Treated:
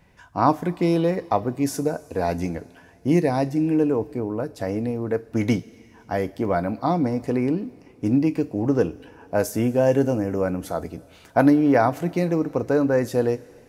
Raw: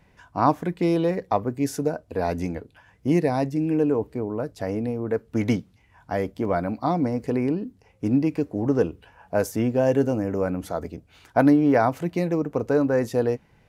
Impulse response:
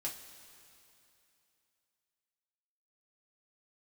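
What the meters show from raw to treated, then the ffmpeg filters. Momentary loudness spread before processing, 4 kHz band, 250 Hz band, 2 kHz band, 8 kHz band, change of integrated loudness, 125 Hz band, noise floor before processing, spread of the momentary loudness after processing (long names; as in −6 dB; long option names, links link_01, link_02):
9 LU, +2.5 dB, +1.5 dB, +1.5 dB, +3.5 dB, +1.5 dB, +1.5 dB, −59 dBFS, 9 LU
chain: -filter_complex "[0:a]asplit=2[link_01][link_02];[1:a]atrim=start_sample=2205,highshelf=frequency=3800:gain=11[link_03];[link_02][link_03]afir=irnorm=-1:irlink=0,volume=-12dB[link_04];[link_01][link_04]amix=inputs=2:normalize=0"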